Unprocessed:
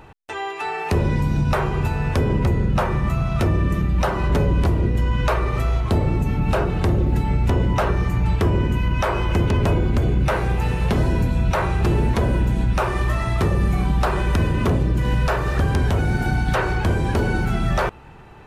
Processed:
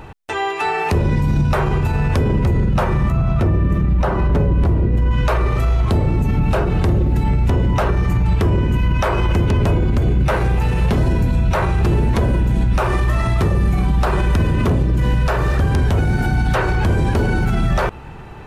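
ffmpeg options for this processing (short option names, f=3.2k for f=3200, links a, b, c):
-filter_complex "[0:a]asettb=1/sr,asplit=3[a][b][c];[a]atrim=end=3.104[d];[b]atrim=start=3.1:end=5.11,asetpts=PTS-STARTPTS,afade=t=in:d=0.004:c=qsin,afade=t=out:st=2.006:d=0.004:c=qsin,highshelf=f=2.6k:g=-11[e];[c]atrim=start=5.106[f];[d][e]acrossfade=d=0.004:c1=hsin:c2=qsin[g];[g][f]acrossfade=d=0.004:c1=qsin:c2=hsin,lowshelf=f=240:g=3.5,alimiter=level_in=15dB:limit=-1dB:release=50:level=0:latency=1,volume=-8.5dB"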